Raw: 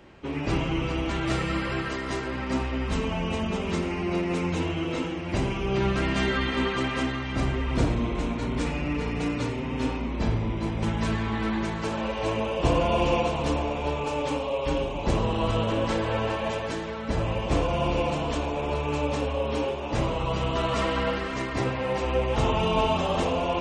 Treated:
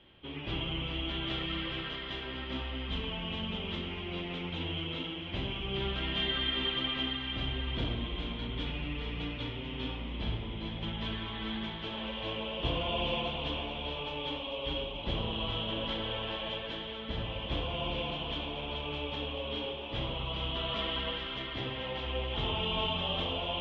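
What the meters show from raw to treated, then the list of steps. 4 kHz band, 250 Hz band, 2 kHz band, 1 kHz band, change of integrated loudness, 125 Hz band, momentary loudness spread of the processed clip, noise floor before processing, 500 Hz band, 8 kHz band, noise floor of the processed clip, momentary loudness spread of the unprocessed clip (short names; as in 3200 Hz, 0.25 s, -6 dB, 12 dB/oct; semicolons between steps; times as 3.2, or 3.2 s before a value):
+3.0 dB, -11.0 dB, -7.0 dB, -11.0 dB, -7.5 dB, -9.5 dB, 6 LU, -32 dBFS, -11.5 dB, under -25 dB, -40 dBFS, 5 LU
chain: ladder low-pass 3400 Hz, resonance 85%; low shelf 140 Hz +4.5 dB; split-band echo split 1500 Hz, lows 0.104 s, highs 0.436 s, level -8 dB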